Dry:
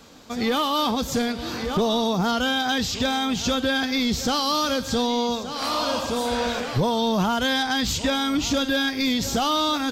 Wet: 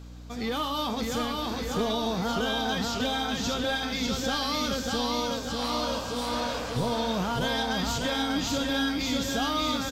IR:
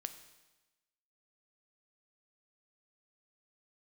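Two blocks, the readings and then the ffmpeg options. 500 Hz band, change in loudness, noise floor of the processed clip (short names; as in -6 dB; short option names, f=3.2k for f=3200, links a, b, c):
-5.0 dB, -5.0 dB, -35 dBFS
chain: -filter_complex "[0:a]aecho=1:1:595|1190|1785|2380|2975|3570|4165:0.708|0.361|0.184|0.0939|0.0479|0.0244|0.0125,aeval=exprs='val(0)+0.0178*(sin(2*PI*60*n/s)+sin(2*PI*2*60*n/s)/2+sin(2*PI*3*60*n/s)/3+sin(2*PI*4*60*n/s)/4+sin(2*PI*5*60*n/s)/5)':c=same[a];[1:a]atrim=start_sample=2205,asetrate=88200,aresample=44100[b];[a][b]afir=irnorm=-1:irlink=0,volume=1.5dB"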